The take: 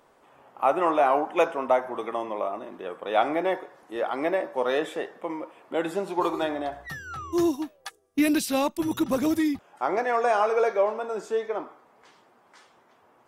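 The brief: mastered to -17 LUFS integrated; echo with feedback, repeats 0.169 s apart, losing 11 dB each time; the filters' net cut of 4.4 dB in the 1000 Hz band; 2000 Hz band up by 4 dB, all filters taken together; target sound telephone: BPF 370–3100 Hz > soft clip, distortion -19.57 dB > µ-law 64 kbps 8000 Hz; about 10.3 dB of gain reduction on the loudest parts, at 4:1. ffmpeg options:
-af "equalizer=f=1k:t=o:g=-8,equalizer=f=2k:t=o:g=8.5,acompressor=threshold=-31dB:ratio=4,highpass=370,lowpass=3.1k,aecho=1:1:169|338|507:0.282|0.0789|0.0221,asoftclip=threshold=-26dB,volume=20.5dB" -ar 8000 -c:a pcm_mulaw

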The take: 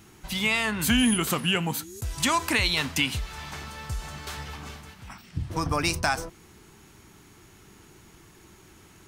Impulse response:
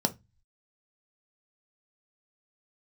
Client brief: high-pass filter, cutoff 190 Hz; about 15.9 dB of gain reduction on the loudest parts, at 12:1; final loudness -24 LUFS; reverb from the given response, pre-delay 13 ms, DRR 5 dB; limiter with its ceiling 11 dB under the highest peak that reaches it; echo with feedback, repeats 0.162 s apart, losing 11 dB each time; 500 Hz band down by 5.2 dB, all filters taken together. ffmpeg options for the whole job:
-filter_complex "[0:a]highpass=190,equalizer=f=500:t=o:g=-7,acompressor=threshold=-36dB:ratio=12,alimiter=level_in=7.5dB:limit=-24dB:level=0:latency=1,volume=-7.5dB,aecho=1:1:162|324|486:0.282|0.0789|0.0221,asplit=2[a][b];[1:a]atrim=start_sample=2205,adelay=13[c];[b][c]afir=irnorm=-1:irlink=0,volume=-13dB[d];[a][d]amix=inputs=2:normalize=0,volume=16dB"

